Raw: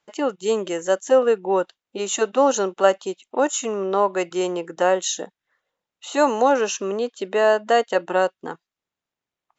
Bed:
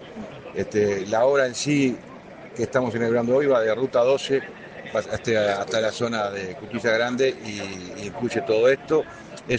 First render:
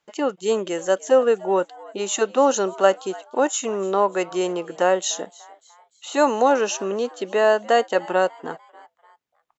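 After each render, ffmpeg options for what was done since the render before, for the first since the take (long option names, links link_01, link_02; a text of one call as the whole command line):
ffmpeg -i in.wav -filter_complex "[0:a]asplit=4[link_01][link_02][link_03][link_04];[link_02]adelay=296,afreqshift=110,volume=-22dB[link_05];[link_03]adelay=592,afreqshift=220,volume=-28.9dB[link_06];[link_04]adelay=888,afreqshift=330,volume=-35.9dB[link_07];[link_01][link_05][link_06][link_07]amix=inputs=4:normalize=0" out.wav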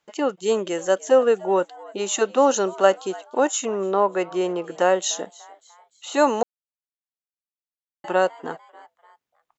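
ffmpeg -i in.wav -filter_complex "[0:a]asettb=1/sr,asplit=3[link_01][link_02][link_03];[link_01]atrim=end=3.654[link_04];[link_02]atrim=start=3.65:end=4.64,asetpts=PTS-STARTPTS,afade=type=in:duration=0.004:curve=qsin,afade=type=out:start_time=0.986:duration=0.004:curve=qsin,highshelf=frequency=4500:gain=-11.5[link_05];[link_03]atrim=start=4.636[link_06];[link_04][link_05]acrossfade=duration=0.004:curve1=hsin:curve2=qsin[link_07];[link_07][link_06]acrossfade=duration=0.004:curve1=qsin:curve2=hsin,asplit=3[link_08][link_09][link_10];[link_08]atrim=end=6.43,asetpts=PTS-STARTPTS,afade=type=out:start_time=6.426:duration=0.004:curve=hsin[link_11];[link_09]atrim=start=6.43:end=8.04,asetpts=PTS-STARTPTS,volume=0[link_12];[link_10]atrim=start=8.04,asetpts=PTS-STARTPTS,afade=type=in:duration=0.004:curve=hsin[link_13];[link_11][link_12][link_13]concat=n=3:v=0:a=1" out.wav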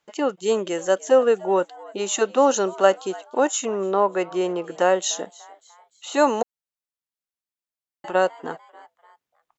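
ffmpeg -i in.wav -filter_complex "[0:a]asettb=1/sr,asplit=3[link_01][link_02][link_03];[link_01]atrim=end=6.424[link_04];[link_02]atrim=start=6.42:end=8.15,asetpts=PTS-STARTPTS,afade=type=in:duration=0.004:curve=qsin,afade=type=out:start_time=1.726:duration=0.004:curve=qsin,acompressor=threshold=-29dB:ratio=2.5:attack=3.2:release=140:knee=1:detection=peak[link_05];[link_03]atrim=start=8.146[link_06];[link_04][link_05]acrossfade=duration=0.004:curve1=hsin:curve2=qsin[link_07];[link_07][link_06]acrossfade=duration=0.004:curve1=qsin:curve2=hsin" out.wav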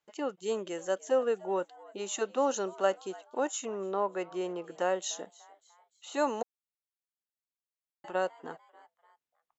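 ffmpeg -i in.wav -af "volume=-11dB" out.wav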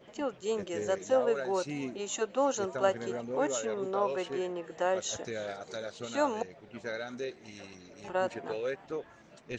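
ffmpeg -i in.wav -i bed.wav -filter_complex "[1:a]volume=-16.5dB[link_01];[0:a][link_01]amix=inputs=2:normalize=0" out.wav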